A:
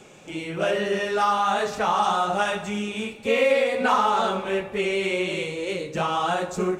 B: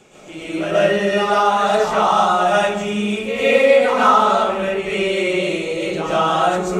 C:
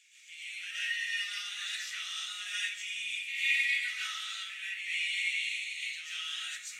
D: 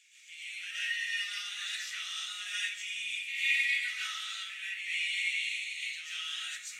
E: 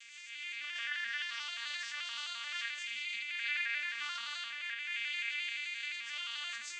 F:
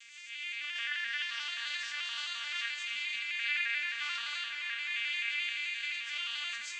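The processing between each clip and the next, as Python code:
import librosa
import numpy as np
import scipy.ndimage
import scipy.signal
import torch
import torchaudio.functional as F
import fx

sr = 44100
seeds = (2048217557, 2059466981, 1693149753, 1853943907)

y1 = fx.rev_freeverb(x, sr, rt60_s=0.57, hf_ratio=0.3, predelay_ms=95, drr_db=-8.0)
y1 = y1 * 10.0 ** (-2.0 / 20.0)
y2 = scipy.signal.sosfilt(scipy.signal.ellip(4, 1.0, 50, 1900.0, 'highpass', fs=sr, output='sos'), y1)
y2 = y2 * 10.0 ** (-6.5 / 20.0)
y3 = y2
y4 = fx.vocoder_arp(y3, sr, chord='major triad', root=58, every_ms=87)
y4 = fx.env_flatten(y4, sr, amount_pct=50)
y4 = y4 * 10.0 ** (-7.5 / 20.0)
y5 = fx.dynamic_eq(y4, sr, hz=2800.0, q=1.3, threshold_db=-50.0, ratio=4.0, max_db=4)
y5 = fx.echo_diffused(y5, sr, ms=563, feedback_pct=45, wet_db=-10.0)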